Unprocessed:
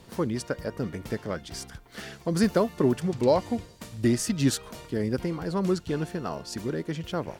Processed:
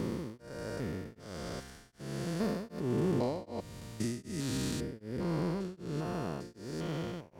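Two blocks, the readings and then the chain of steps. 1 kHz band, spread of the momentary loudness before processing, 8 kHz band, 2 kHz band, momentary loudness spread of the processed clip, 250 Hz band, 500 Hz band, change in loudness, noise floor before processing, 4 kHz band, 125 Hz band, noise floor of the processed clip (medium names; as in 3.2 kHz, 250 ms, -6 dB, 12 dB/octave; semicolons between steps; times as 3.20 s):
-9.0 dB, 11 LU, -10.0 dB, -8.5 dB, 11 LU, -8.0 dB, -9.5 dB, -8.5 dB, -51 dBFS, -8.0 dB, -6.0 dB, -58 dBFS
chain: spectrogram pixelated in time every 400 ms; tremolo of two beating tones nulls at 1.3 Hz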